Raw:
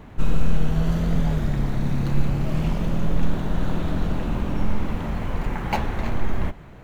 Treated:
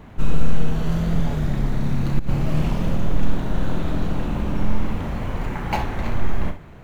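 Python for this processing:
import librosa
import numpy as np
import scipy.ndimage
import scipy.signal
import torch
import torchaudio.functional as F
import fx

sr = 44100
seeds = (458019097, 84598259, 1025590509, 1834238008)

y = fx.room_early_taps(x, sr, ms=(34, 66), db=(-9.0, -11.0))
y = fx.over_compress(y, sr, threshold_db=-15.0, ratio=-0.5, at=(2.19, 2.96))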